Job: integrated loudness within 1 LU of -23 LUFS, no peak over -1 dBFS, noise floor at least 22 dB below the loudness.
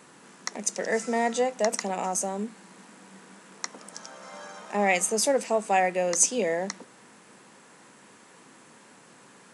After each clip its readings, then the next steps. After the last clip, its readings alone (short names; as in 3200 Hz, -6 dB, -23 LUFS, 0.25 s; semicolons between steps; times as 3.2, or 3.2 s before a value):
loudness -26.5 LUFS; peak -5.0 dBFS; loudness target -23.0 LUFS
-> gain +3.5 dB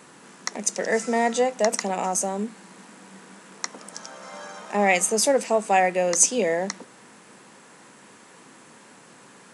loudness -23.0 LUFS; peak -1.5 dBFS; noise floor -51 dBFS